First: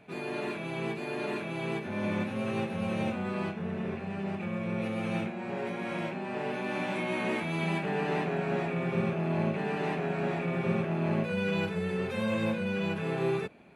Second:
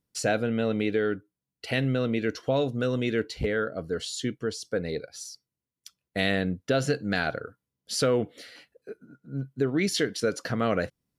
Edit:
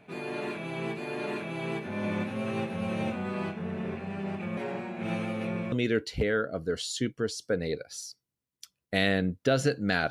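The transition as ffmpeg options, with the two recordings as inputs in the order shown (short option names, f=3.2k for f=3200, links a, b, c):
-filter_complex "[0:a]apad=whole_dur=10.1,atrim=end=10.1,asplit=2[a][b];[a]atrim=end=4.572[c];[b]atrim=start=4.568:end=5.722,asetpts=PTS-STARTPTS,areverse[d];[1:a]atrim=start=2.948:end=7.33[e];[c][d]acrossfade=d=0.004:c1=hsin:c2=hsin[f];[f][e]acrossfade=d=0.004:c1=hsin:c2=hsin"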